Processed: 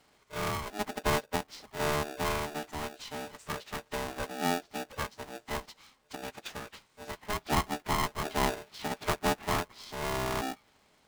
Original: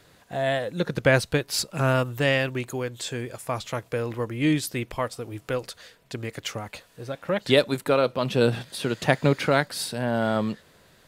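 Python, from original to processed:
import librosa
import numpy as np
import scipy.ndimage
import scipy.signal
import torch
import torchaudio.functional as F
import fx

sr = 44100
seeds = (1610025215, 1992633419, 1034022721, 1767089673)

y = fx.env_lowpass_down(x, sr, base_hz=1100.0, full_db=-20.0)
y = fx.pitch_keep_formants(y, sr, semitones=-9.5)
y = y * np.sign(np.sin(2.0 * np.pi * 520.0 * np.arange(len(y)) / sr))
y = F.gain(torch.from_numpy(y), -7.5).numpy()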